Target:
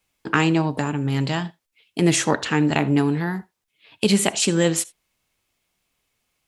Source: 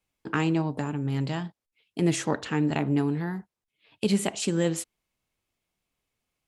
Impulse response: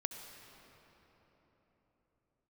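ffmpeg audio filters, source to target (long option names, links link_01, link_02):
-filter_complex "[0:a]asplit=2[link_01][link_02];[link_02]highpass=frequency=1200:poles=1[link_03];[1:a]atrim=start_sample=2205,atrim=end_sample=3969[link_04];[link_03][link_04]afir=irnorm=-1:irlink=0,volume=0.5dB[link_05];[link_01][link_05]amix=inputs=2:normalize=0,volume=5dB"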